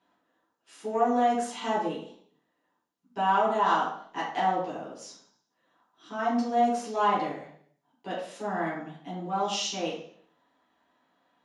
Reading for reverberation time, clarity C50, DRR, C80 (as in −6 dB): 0.60 s, 3.5 dB, −7.0 dB, 7.5 dB